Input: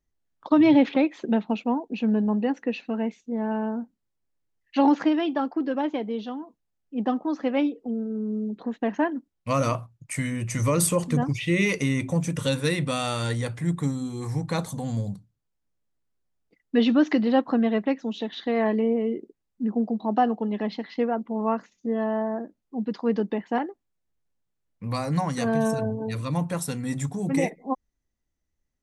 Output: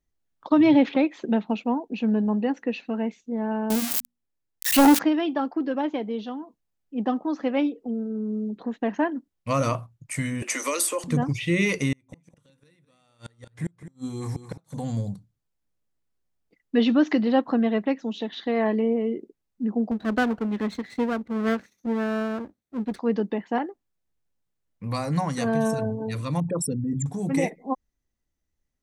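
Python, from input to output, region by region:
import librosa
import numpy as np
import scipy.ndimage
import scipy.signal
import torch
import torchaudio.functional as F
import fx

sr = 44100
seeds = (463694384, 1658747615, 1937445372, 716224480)

y = fx.chain(x, sr, fx.crossing_spikes(level_db=-17.0),
    fx.hum_notches(base_hz=60, count=4),
    fx.leveller(passes=2), at=(3.7, 4.99))
y = fx.chain(y, sr, fx.cheby1_highpass(hz=260.0, order=5),
    fx.low_shelf(hz=380.0, db=-11.5),
    fx.band_squash(depth_pct=70), at=(10.42, 11.04))
y = fx.chain(y, sr, fx.gate_flip(shuts_db=-19.0, range_db=-37),
    fx.echo_single(ms=212, db=-12.5), at=(11.92, 14.89))
y = fx.chain(y, sr, fx.lower_of_two(delay_ms=0.5),
    fx.highpass(hz=58.0, slope=12), at=(19.91, 22.99))
y = fx.chain(y, sr, fx.envelope_sharpen(power=3.0),
    fx.env_flatten(amount_pct=50), at=(26.4, 27.06))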